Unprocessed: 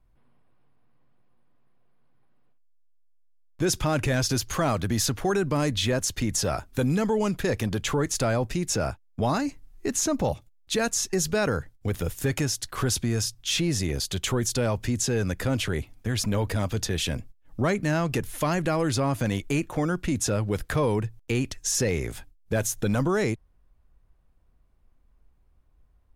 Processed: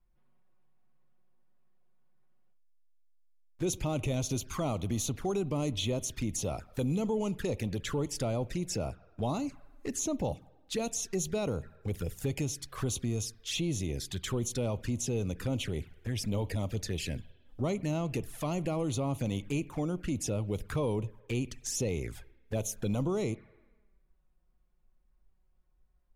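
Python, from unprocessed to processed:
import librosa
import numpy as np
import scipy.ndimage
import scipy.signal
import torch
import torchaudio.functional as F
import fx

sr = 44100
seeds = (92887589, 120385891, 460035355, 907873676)

y = fx.rev_spring(x, sr, rt60_s=1.2, pass_ms=(50,), chirp_ms=50, drr_db=19.0)
y = fx.env_flanger(y, sr, rest_ms=5.8, full_db=-22.5)
y = y * 10.0 ** (-6.0 / 20.0)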